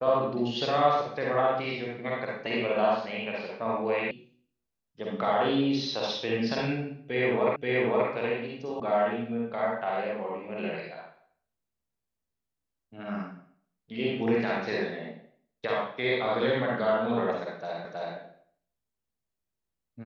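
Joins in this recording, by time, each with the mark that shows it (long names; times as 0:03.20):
0:04.11: cut off before it has died away
0:07.56: the same again, the last 0.53 s
0:08.80: cut off before it has died away
0:17.85: the same again, the last 0.32 s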